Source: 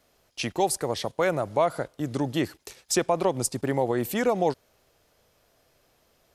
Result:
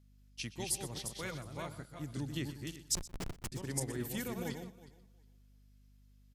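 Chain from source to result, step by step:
feedback delay that plays each chunk backwards 181 ms, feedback 40%, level −3.5 dB
guitar amp tone stack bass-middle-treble 6-0-2
0:02.95–0:03.52: comparator with hysteresis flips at −37.5 dBFS
mains hum 50 Hz, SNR 15 dB
on a send: single-tap delay 123 ms −13 dB
on the sum: expander for the loud parts 1.5 to 1, over −57 dBFS
level +9.5 dB

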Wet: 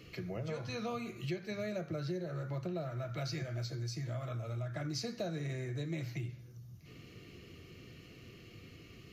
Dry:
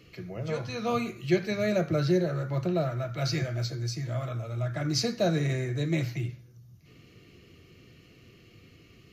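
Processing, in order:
downward compressor 5 to 1, threshold −38 dBFS, peak gain reduction 17.5 dB
level +1 dB

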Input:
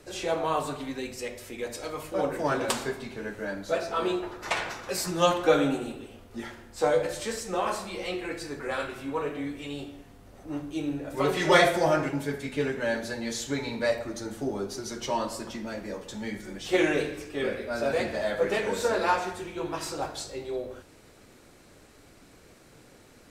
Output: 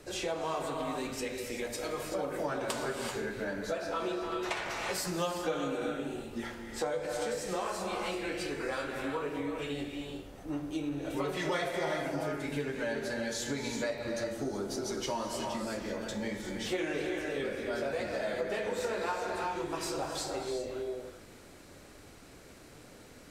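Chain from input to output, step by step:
reverb whose tail is shaped and stops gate 410 ms rising, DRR 4 dB
downward compressor 4 to 1, threshold −32 dBFS, peak gain reduction 15 dB

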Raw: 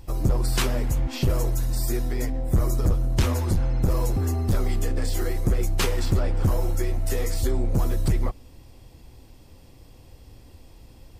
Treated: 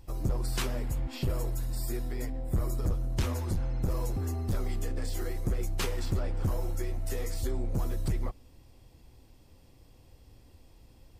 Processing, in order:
0:00.79–0:02.83: notch filter 6,100 Hz, Q 7.2
level −8 dB

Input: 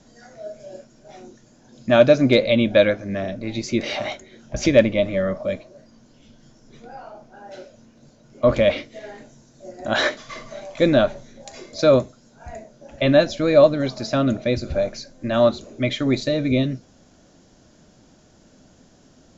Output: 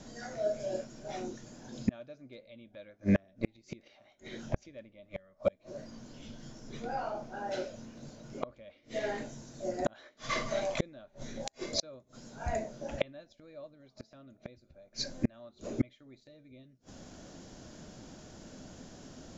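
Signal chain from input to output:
0:05.09–0:05.50: parametric band 240 Hz −7 dB 2.4 octaves
gate with flip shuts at −19 dBFS, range −38 dB
level +3 dB

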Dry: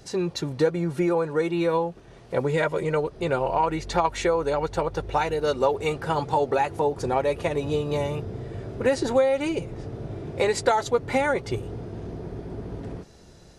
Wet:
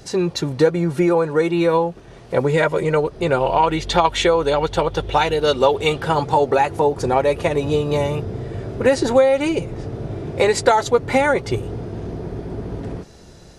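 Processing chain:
0:03.40–0:06.08: parametric band 3,300 Hz +10.5 dB 0.46 octaves
level +6.5 dB

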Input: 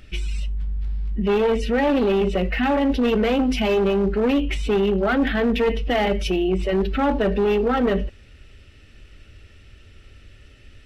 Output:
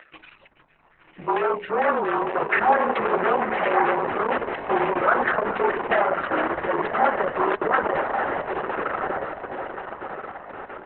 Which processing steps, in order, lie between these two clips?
repeating echo 433 ms, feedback 56%, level −14 dB
upward compression, threshold −42 dBFS
soft clipping −17.5 dBFS, distortion −15 dB
high-frequency loss of the air 160 metres
auto-filter low-pass saw down 4.4 Hz 880–1,900 Hz
high-pass filter 680 Hz 12 dB per octave
0:03.72–0:06.19: high-shelf EQ 5,100 Hz −8.5 dB
feedback delay with all-pass diffusion 1,170 ms, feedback 54%, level −5.5 dB
frequency shifter −35 Hz
level +5 dB
Opus 6 kbit/s 48,000 Hz

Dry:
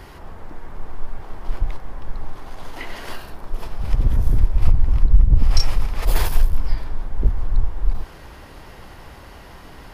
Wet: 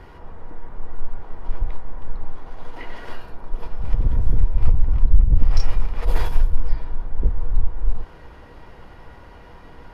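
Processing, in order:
low-pass filter 1,800 Hz 6 dB per octave
tuned comb filter 480 Hz, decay 0.19 s, harmonics all, mix 70%
level +7 dB

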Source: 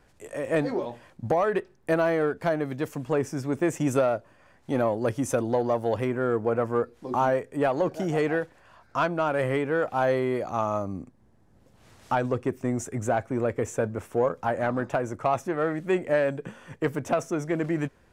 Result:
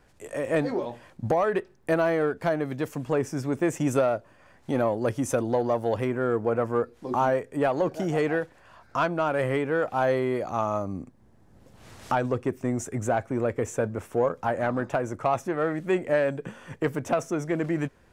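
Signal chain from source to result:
camcorder AGC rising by 6 dB per second

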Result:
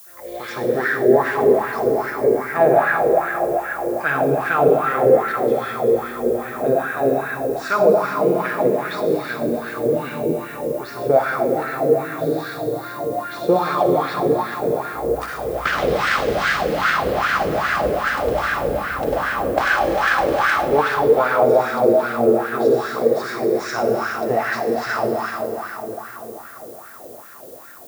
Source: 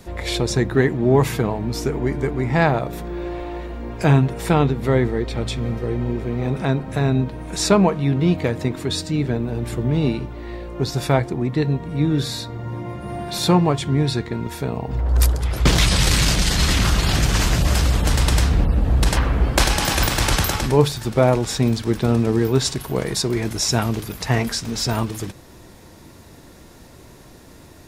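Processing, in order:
notch filter 950 Hz, Q 6.4
convolution reverb RT60 4.9 s, pre-delay 46 ms, DRR −4 dB
LFO wah 2.5 Hz 460–1,600 Hz, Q 4.9
automatic gain control gain up to 10 dB
background noise violet −45 dBFS
level +1 dB

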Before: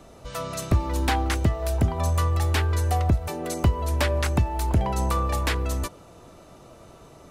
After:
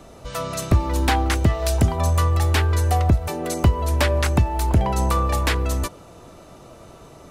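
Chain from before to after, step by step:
0:01.48–0:01.95: parametric band 2,800 Hz → 11,000 Hz +7.5 dB 2.2 octaves
level +4 dB

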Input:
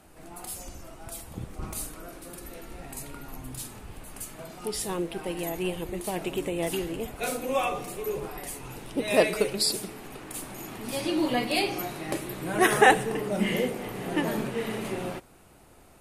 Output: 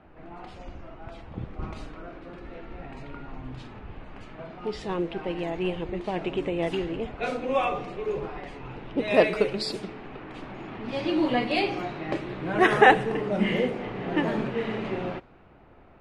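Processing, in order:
low-pass that shuts in the quiet parts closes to 2,400 Hz, open at −22 dBFS
low-pass filter 3,200 Hz 12 dB per octave
level +2 dB

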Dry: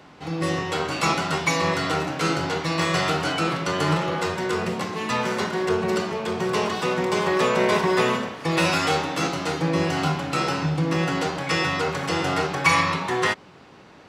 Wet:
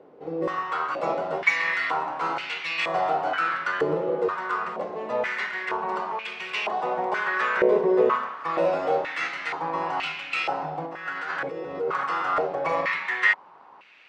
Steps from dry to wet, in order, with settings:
0:10.86–0:12.04: compressor whose output falls as the input rises −28 dBFS, ratio −1
band-pass on a step sequencer 2.1 Hz 460–2,500 Hz
level +7.5 dB

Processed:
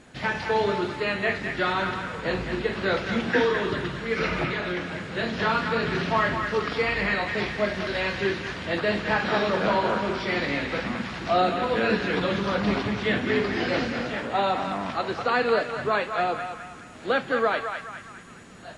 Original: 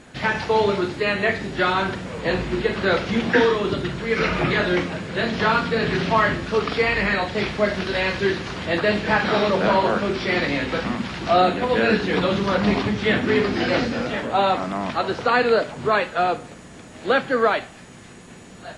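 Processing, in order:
0:04.44–0:05.03: downward compressor, threshold −21 dBFS, peak gain reduction 5.5 dB
feedback echo with a band-pass in the loop 210 ms, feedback 52%, band-pass 1,700 Hz, level −5 dB
level −5 dB

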